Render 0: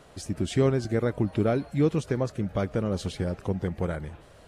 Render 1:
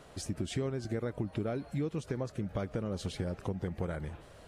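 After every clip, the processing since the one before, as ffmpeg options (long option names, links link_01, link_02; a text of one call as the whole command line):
ffmpeg -i in.wav -af "acompressor=threshold=-30dB:ratio=5,volume=-1.5dB" out.wav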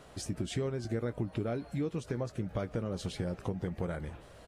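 ffmpeg -i in.wav -filter_complex "[0:a]asplit=2[link_01][link_02];[link_02]adelay=17,volume=-12dB[link_03];[link_01][link_03]amix=inputs=2:normalize=0" out.wav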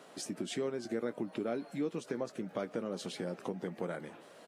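ffmpeg -i in.wav -af "highpass=frequency=200:width=0.5412,highpass=frequency=200:width=1.3066" out.wav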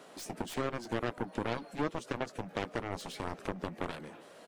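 ffmpeg -i in.wav -af "aeval=exprs='0.075*(cos(1*acos(clip(val(0)/0.075,-1,1)))-cos(1*PI/2))+0.00473*(cos(4*acos(clip(val(0)/0.075,-1,1)))-cos(4*PI/2))+0.0237*(cos(7*acos(clip(val(0)/0.075,-1,1)))-cos(7*PI/2))+0.000473*(cos(8*acos(clip(val(0)/0.075,-1,1)))-cos(8*PI/2))':channel_layout=same" out.wav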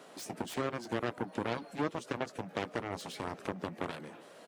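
ffmpeg -i in.wav -af "highpass=94" out.wav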